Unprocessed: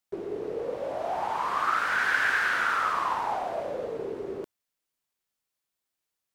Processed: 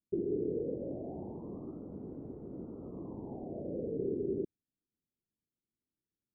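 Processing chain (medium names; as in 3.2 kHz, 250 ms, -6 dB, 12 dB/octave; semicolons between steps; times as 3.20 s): inverse Chebyshev low-pass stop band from 1.5 kHz, stop band 70 dB; bass shelf 69 Hz -8 dB; trim +7.5 dB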